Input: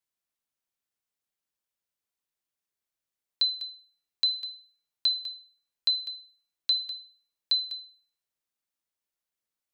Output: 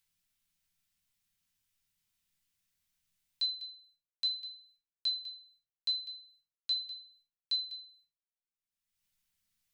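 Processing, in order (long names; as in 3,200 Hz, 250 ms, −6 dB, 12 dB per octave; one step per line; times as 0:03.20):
downward expander −59 dBFS
drawn EQ curve 150 Hz 0 dB, 430 Hz −22 dB, 2,400 Hz −5 dB
upward compression, threshold −40 dBFS
rectangular room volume 150 cubic metres, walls furnished, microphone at 1.6 metres
level −6.5 dB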